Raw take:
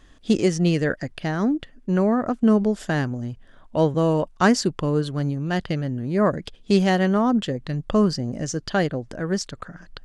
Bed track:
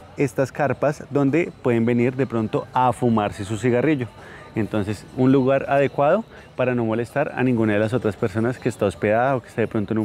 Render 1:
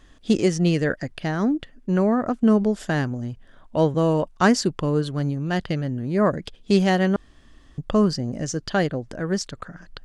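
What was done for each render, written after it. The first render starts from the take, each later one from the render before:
0:07.16–0:07.78: fill with room tone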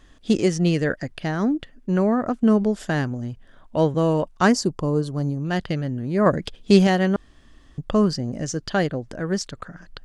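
0:04.52–0:05.45: flat-topped bell 2,300 Hz −9.5 dB
0:06.26–0:06.87: clip gain +4 dB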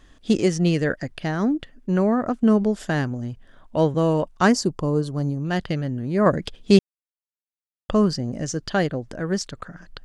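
0:06.79–0:07.89: silence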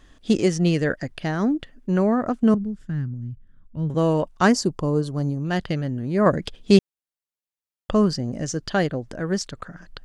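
0:02.54–0:03.90: drawn EQ curve 160 Hz 0 dB, 410 Hz −17 dB, 700 Hz −28 dB, 1,400 Hz −16 dB, 3,800 Hz −23 dB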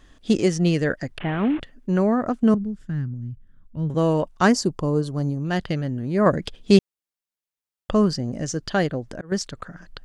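0:01.18–0:01.61: linear delta modulator 16 kbit/s, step −28.5 dBFS
0:08.88–0:09.32: volume swells 277 ms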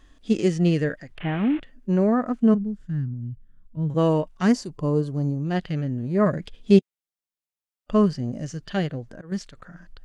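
dynamic equaliser 2,400 Hz, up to +5 dB, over −43 dBFS, Q 1.1
harmonic and percussive parts rebalanced percussive −13 dB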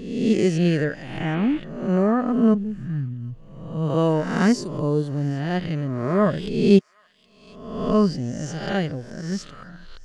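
peak hold with a rise ahead of every peak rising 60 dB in 0.93 s
delay with a high-pass on its return 768 ms, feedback 44%, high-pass 2,200 Hz, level −20 dB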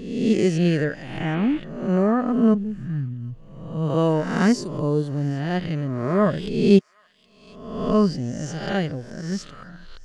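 no processing that can be heard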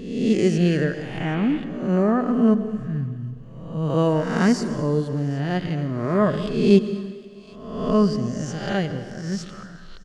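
single-tap delay 227 ms −20.5 dB
dense smooth reverb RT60 1.8 s, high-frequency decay 0.85×, pre-delay 95 ms, DRR 12.5 dB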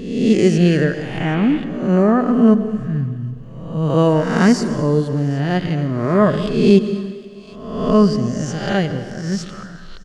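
level +5.5 dB
brickwall limiter −1 dBFS, peak gain reduction 3 dB

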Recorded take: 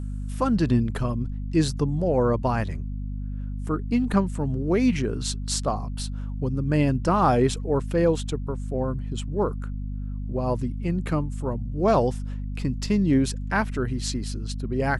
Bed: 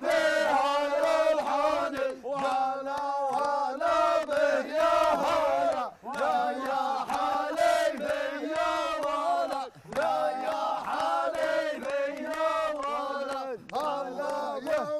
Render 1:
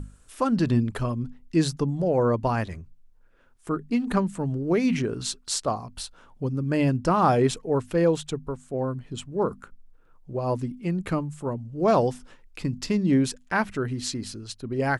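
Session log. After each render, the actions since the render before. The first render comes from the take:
mains-hum notches 50/100/150/200/250 Hz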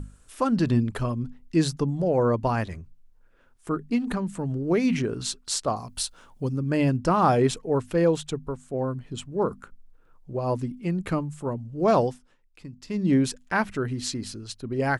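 0:03.98–0:04.63: downward compressor, threshold −23 dBFS
0:05.76–0:06.57: high-shelf EQ 4,000 Hz +10 dB
0:12.01–0:13.06: duck −13 dB, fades 0.20 s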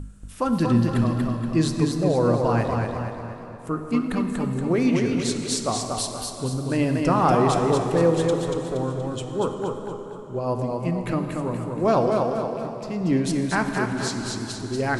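dense smooth reverb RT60 3.7 s, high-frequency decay 0.75×, DRR 6 dB
feedback echo with a swinging delay time 236 ms, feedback 45%, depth 71 cents, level −4 dB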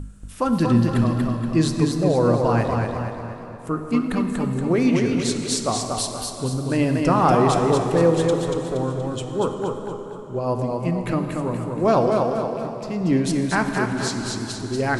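level +2 dB

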